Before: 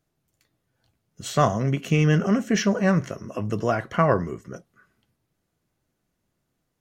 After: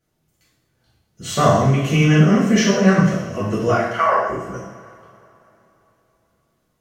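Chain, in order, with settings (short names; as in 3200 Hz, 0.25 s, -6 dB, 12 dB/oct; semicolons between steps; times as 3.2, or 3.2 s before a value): 3.74–4.28 HPF 1100 Hz -> 450 Hz 24 dB/oct; two-slope reverb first 0.79 s, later 3.4 s, from -20 dB, DRR -9 dB; gain -2.5 dB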